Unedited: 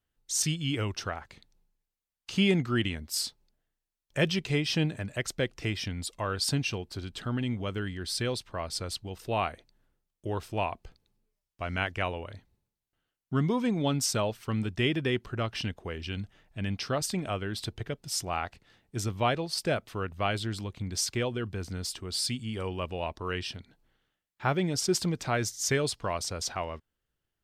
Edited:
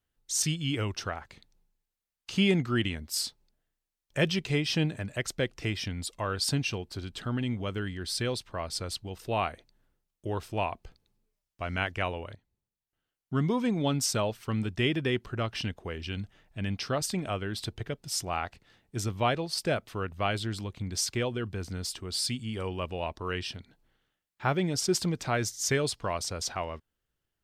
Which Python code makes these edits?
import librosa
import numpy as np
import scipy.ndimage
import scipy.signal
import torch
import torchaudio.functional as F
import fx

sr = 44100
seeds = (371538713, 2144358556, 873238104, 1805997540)

y = fx.edit(x, sr, fx.fade_in_from(start_s=12.35, length_s=1.15, floor_db=-14.5), tone=tone)